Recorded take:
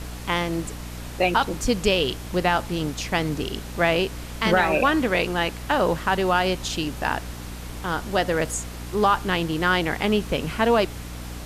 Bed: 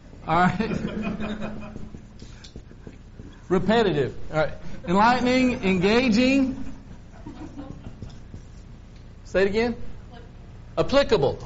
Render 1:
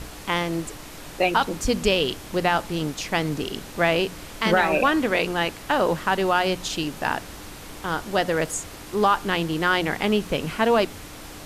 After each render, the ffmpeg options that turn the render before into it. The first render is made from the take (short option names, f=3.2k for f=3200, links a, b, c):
-af "bandreject=f=60:t=h:w=4,bandreject=f=120:t=h:w=4,bandreject=f=180:t=h:w=4,bandreject=f=240:t=h:w=4"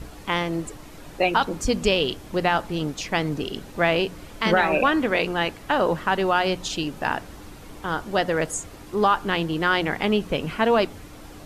-af "afftdn=nr=8:nf=-40"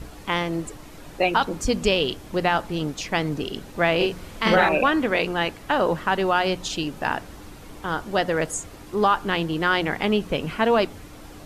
-filter_complex "[0:a]asettb=1/sr,asplit=3[a][b][c];[a]atrim=end=3.964[d];[b]atrim=start=3.96:end=4.69,asetpts=PTS-STARTPTS,afade=t=in:d=0.004:c=qsin,afade=t=out:st=0.726:d=0.004:c=qsin,asplit=2[e][f];[f]adelay=45,volume=-2.5dB[g];[e][g]amix=inputs=2:normalize=0,atrim=end_sample=32193[h];[c]atrim=start=4.686[i];[d][h]acrossfade=d=0.004:c1=hsin:c2=qsin[j];[j][i]acrossfade=d=0.004:c1=qsin:c2=hsin"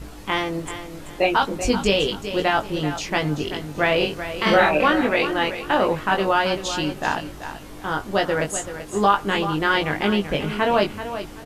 -filter_complex "[0:a]asplit=2[a][b];[b]adelay=20,volume=-4dB[c];[a][c]amix=inputs=2:normalize=0,aecho=1:1:384|768|1152:0.282|0.0789|0.0221"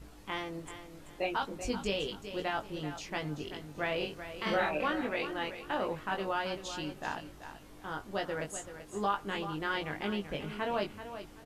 -af "volume=-14dB"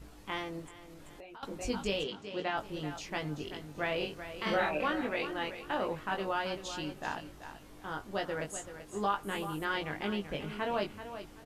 -filter_complex "[0:a]asettb=1/sr,asplit=3[a][b][c];[a]atrim=end=0.654[d];[b]atrim=start=0.65:end=1.43,asetpts=PTS-STARTPTS,afade=t=in:d=0.004:c=qsin,afade=t=out:st=0.776:d=0.004:c=qsin,acompressor=threshold=-46dB:ratio=12:attack=3.2:release=140:knee=1:detection=peak[e];[c]atrim=start=1.426[f];[d][e]acrossfade=d=0.004:c1=hsin:c2=qsin[g];[g][f]acrossfade=d=0.004:c1=qsin:c2=hsin,asplit=3[h][i][j];[h]afade=t=out:st=2.03:d=0.02[k];[i]highpass=120,lowpass=5.5k,afade=t=in:st=2.03:d=0.02,afade=t=out:st=2.56:d=0.02[l];[j]afade=t=in:st=2.56:d=0.02[m];[k][l][m]amix=inputs=3:normalize=0,asettb=1/sr,asplit=3[n][o][p];[n]atrim=end=9.234[q];[o]atrim=start=9.23:end=9.65,asetpts=PTS-STARTPTS,afade=t=in:d=0.004:c=qsin,afade=t=out:st=0.416:d=0.004:c=qsin,highshelf=f=7.1k:t=q:w=1.5:g=11[r];[p]atrim=start=9.646[s];[q][r]acrossfade=d=0.004:c1=hsin:c2=qsin[t];[t][s]acrossfade=d=0.004:c1=qsin:c2=hsin"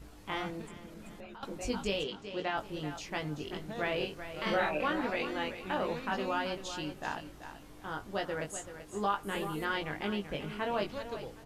-filter_complex "[1:a]volume=-23dB[a];[0:a][a]amix=inputs=2:normalize=0"